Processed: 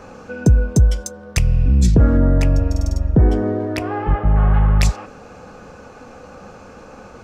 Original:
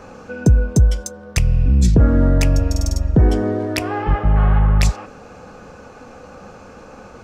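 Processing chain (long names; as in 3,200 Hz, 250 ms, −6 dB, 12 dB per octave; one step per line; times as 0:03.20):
0:02.17–0:04.54: high-shelf EQ 2,800 Hz −10 dB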